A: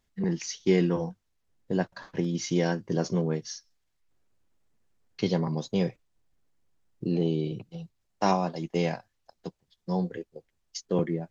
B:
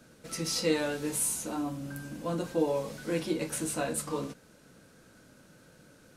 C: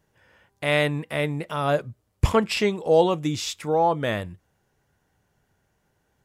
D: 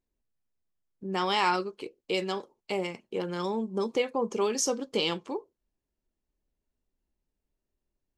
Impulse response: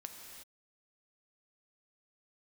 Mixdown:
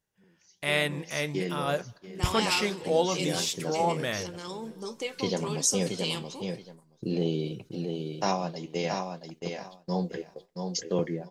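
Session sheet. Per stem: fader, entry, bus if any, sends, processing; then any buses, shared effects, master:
-9.5 dB, 0.00 s, send -23.5 dB, echo send -5 dB, bell 540 Hz +3.5 dB; AGC gain up to 12 dB; auto duck -17 dB, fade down 0.30 s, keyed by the third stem
-8.5 dB, 2.15 s, no send, echo send -15.5 dB, reverb removal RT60 2 s; compressor, threshold -41 dBFS, peak gain reduction 17.5 dB
-4.0 dB, 0.00 s, send -20 dB, no echo send, dry
-6.0 dB, 1.05 s, send -11 dB, no echo send, bell 8600 Hz +8 dB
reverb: on, pre-delay 3 ms
echo: feedback echo 0.676 s, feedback 19%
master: gate -44 dBFS, range -10 dB; flange 1.2 Hz, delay 3.7 ms, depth 5.9 ms, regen -78%; high shelf 2200 Hz +10 dB

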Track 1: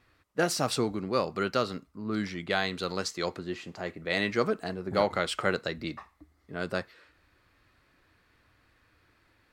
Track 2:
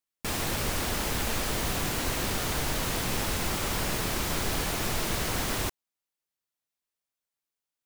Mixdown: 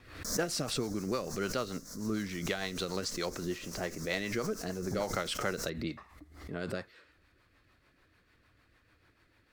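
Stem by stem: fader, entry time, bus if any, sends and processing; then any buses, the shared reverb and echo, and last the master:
+0.5 dB, 0.00 s, no send, compressor, threshold -28 dBFS, peak gain reduction 9 dB
-9.5 dB, 0.00 s, no send, median filter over 5 samples; resonant high shelf 4200 Hz +12 dB, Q 3; fixed phaser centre 540 Hz, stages 8; auto duck -12 dB, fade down 0.30 s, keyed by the first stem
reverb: off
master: rotary speaker horn 6.7 Hz; backwards sustainer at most 80 dB/s

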